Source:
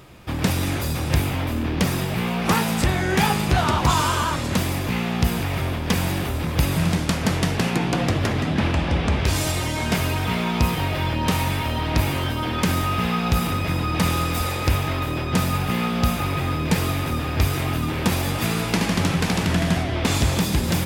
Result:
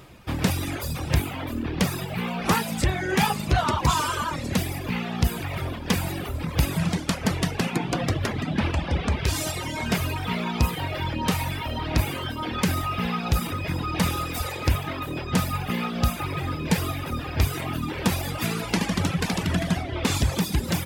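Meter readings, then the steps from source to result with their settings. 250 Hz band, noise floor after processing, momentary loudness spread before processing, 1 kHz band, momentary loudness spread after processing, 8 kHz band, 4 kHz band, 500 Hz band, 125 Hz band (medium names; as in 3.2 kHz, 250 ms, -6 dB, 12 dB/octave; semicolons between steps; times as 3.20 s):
-4.0 dB, -33 dBFS, 4 LU, -3.5 dB, 6 LU, -3.0 dB, -3.5 dB, -4.0 dB, -4.0 dB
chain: reverb removal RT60 1.6 s; trim -1 dB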